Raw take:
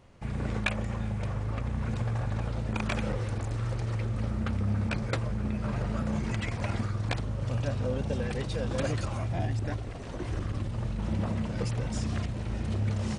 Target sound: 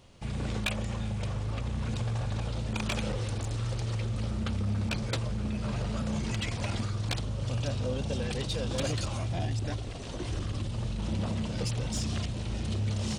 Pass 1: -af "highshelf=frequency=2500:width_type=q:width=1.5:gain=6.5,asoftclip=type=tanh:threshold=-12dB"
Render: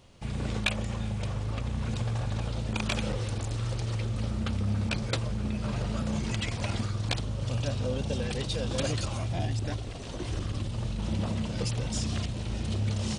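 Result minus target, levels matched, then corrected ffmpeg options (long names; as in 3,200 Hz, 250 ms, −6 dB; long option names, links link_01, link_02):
soft clipping: distortion −14 dB
-af "highshelf=frequency=2500:width_type=q:width=1.5:gain=6.5,asoftclip=type=tanh:threshold=-22dB"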